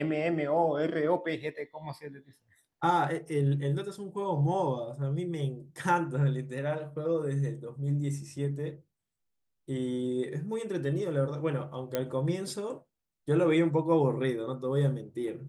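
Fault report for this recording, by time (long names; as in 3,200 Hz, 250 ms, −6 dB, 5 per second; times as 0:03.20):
0:11.95: click −15 dBFS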